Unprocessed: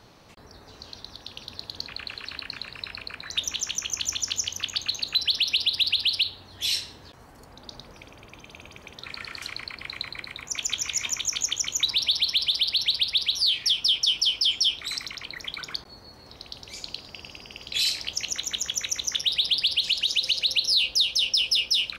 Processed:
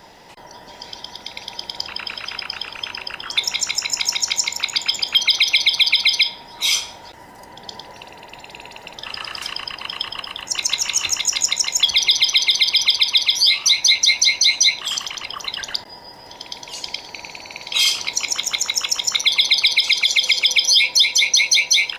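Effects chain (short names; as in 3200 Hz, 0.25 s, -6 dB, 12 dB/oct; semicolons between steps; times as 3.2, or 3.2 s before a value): band inversion scrambler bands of 1000 Hz; gain +8 dB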